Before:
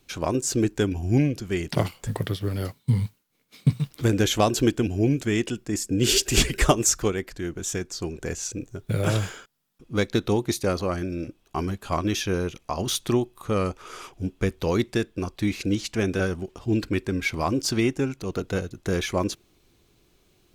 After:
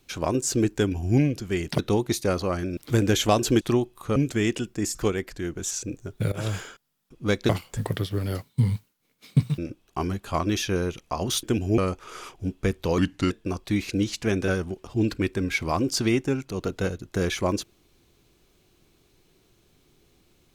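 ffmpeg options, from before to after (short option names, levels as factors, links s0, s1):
-filter_complex "[0:a]asplit=14[s0][s1][s2][s3][s4][s5][s6][s7][s8][s9][s10][s11][s12][s13];[s0]atrim=end=1.792[s14];[s1]atrim=start=10.178:end=11.162[s15];[s2]atrim=start=3.878:end=4.722[s16];[s3]atrim=start=13.008:end=13.562[s17];[s4]atrim=start=5.068:end=5.862[s18];[s5]atrim=start=6.948:end=7.712[s19];[s6]atrim=start=8.398:end=9.01,asetpts=PTS-STARTPTS,afade=t=out:st=0.608:d=0.004:c=hsin:silence=0.11885[s20];[s7]atrim=start=9.01:end=10.182,asetpts=PTS-STARTPTS,afade=t=in:d=0.27:silence=0.11885[s21];[s8]atrim=start=1.788:end=3.882[s22];[s9]atrim=start=11.158:end=13.012[s23];[s10]atrim=start=4.718:end=5.072[s24];[s11]atrim=start=13.558:end=14.764[s25];[s12]atrim=start=14.76:end=15.02,asetpts=PTS-STARTPTS,asetrate=35280,aresample=44100,atrim=end_sample=14332,asetpts=PTS-STARTPTS[s26];[s13]atrim=start=15.016[s27];[s14][s15]acrossfade=d=0.004:c1=hsin:c2=hsin[s28];[s28][s16]acrossfade=d=0.004:c1=hsin:c2=hsin[s29];[s29][s17]acrossfade=d=0.004:c1=hsin:c2=hsin[s30];[s30][s18]acrossfade=d=0.004:c1=hsin:c2=hsin[s31];[s31][s19]acrossfade=d=0.004:c1=hsin:c2=hsin[s32];[s20][s21]concat=n=2:v=0:a=1[s33];[s32][s33]acrossfade=d=0.004:c1=hsin:c2=hsin[s34];[s34][s22]acrossfade=d=0.004:c1=hsin:c2=hsin[s35];[s35][s23]acrossfade=d=0.004:c1=hsin:c2=hsin[s36];[s36][s24]acrossfade=d=0.004:c1=hsin:c2=hsin[s37];[s37][s25]acrossfade=d=0.004:c1=hsin:c2=hsin[s38];[s38][s26]acrossfade=d=0.004:c1=hsin:c2=hsin[s39];[s39][s27]acrossfade=d=0.004:c1=hsin:c2=hsin"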